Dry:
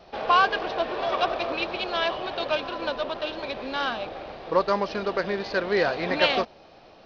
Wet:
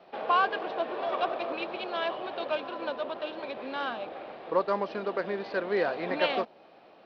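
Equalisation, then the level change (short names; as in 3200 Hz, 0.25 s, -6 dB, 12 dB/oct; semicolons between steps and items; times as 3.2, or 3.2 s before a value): dynamic EQ 2100 Hz, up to -3 dB, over -37 dBFS, Q 0.76; three-band isolator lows -22 dB, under 160 Hz, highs -20 dB, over 3800 Hz; -3.5 dB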